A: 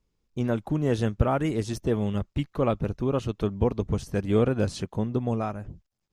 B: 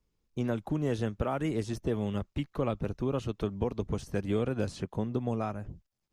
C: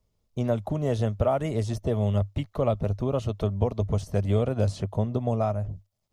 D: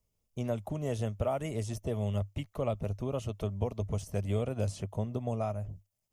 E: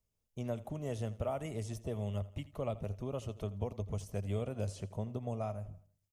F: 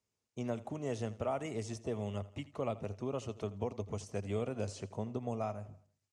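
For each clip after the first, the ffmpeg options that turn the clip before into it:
ffmpeg -i in.wav -filter_complex "[0:a]acrossover=split=230|2500[link_01][link_02][link_03];[link_01]acompressor=threshold=-30dB:ratio=4[link_04];[link_02]acompressor=threshold=-26dB:ratio=4[link_05];[link_03]acompressor=threshold=-45dB:ratio=4[link_06];[link_04][link_05][link_06]amix=inputs=3:normalize=0,volume=-2.5dB" out.wav
ffmpeg -i in.wav -af "equalizer=frequency=100:width_type=o:width=0.33:gain=10,equalizer=frequency=315:width_type=o:width=0.33:gain=-7,equalizer=frequency=630:width_type=o:width=0.33:gain=10,equalizer=frequency=1600:width_type=o:width=0.33:gain=-7,equalizer=frequency=2500:width_type=o:width=0.33:gain=-4,volume=3.5dB" out.wav
ffmpeg -i in.wav -af "aexciter=amount=1.6:drive=4.1:freq=2200,volume=-7.5dB" out.wav
ffmpeg -i in.wav -af "aecho=1:1:82|164|246|328:0.126|0.0567|0.0255|0.0115,volume=-5dB" out.wav
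ffmpeg -i in.wav -af "highpass=150,equalizer=frequency=170:width_type=q:width=4:gain=-8,equalizer=frequency=590:width_type=q:width=4:gain=-5,equalizer=frequency=3300:width_type=q:width=4:gain=-4,lowpass=frequency=8100:width=0.5412,lowpass=frequency=8100:width=1.3066,volume=4dB" out.wav

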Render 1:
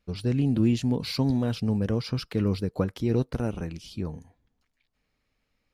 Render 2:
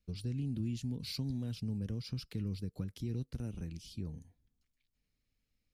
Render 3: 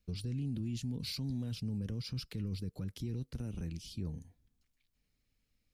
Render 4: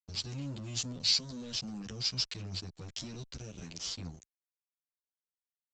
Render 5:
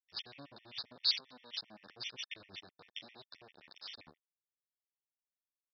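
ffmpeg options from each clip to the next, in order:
ffmpeg -i in.wav -filter_complex "[0:a]equalizer=frequency=950:width_type=o:width=2.8:gain=-14.5,acrossover=split=290|1200[link_01][link_02][link_03];[link_02]alimiter=level_in=10dB:limit=-24dB:level=0:latency=1:release=458,volume=-10dB[link_04];[link_01][link_04][link_03]amix=inputs=3:normalize=0,acompressor=threshold=-34dB:ratio=2,volume=-3.5dB" out.wav
ffmpeg -i in.wav -af "alimiter=level_in=10dB:limit=-24dB:level=0:latency=1:release=11,volume=-10dB,volume=3dB" out.wav
ffmpeg -i in.wav -filter_complex "[0:a]crystalizer=i=9.5:c=0,aresample=16000,aeval=exprs='sgn(val(0))*max(abs(val(0))-0.00794,0)':channel_layout=same,aresample=44100,asplit=2[link_01][link_02];[link_02]adelay=10.1,afreqshift=-0.69[link_03];[link_01][link_03]amix=inputs=2:normalize=1,volume=2dB" out.wav
ffmpeg -i in.wav -af "aresample=11025,aeval=exprs='sgn(val(0))*max(abs(val(0))-0.00501,0)':channel_layout=same,aresample=44100,bandpass=frequency=2100:width_type=q:width=0.51:csg=0,afftfilt=real='re*gt(sin(2*PI*7.6*pts/sr)*(1-2*mod(floor(b*sr/1024/1800),2)),0)':imag='im*gt(sin(2*PI*7.6*pts/sr)*(1-2*mod(floor(b*sr/1024/1800),2)),0)':win_size=1024:overlap=0.75,volume=3.5dB" out.wav

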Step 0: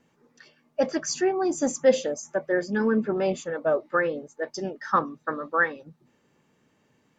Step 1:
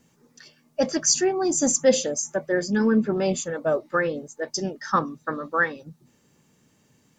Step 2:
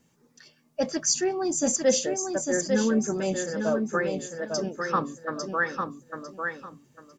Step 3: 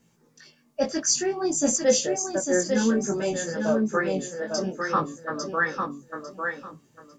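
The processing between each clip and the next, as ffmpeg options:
ffmpeg -i in.wav -af "bass=frequency=250:gain=7,treble=frequency=4000:gain=13" out.wav
ffmpeg -i in.wav -af "aecho=1:1:850|1700|2550:0.562|0.129|0.0297,volume=-4dB" out.wav
ffmpeg -i in.wav -af "flanger=delay=17.5:depth=4.8:speed=0.56,volume=4.5dB" out.wav

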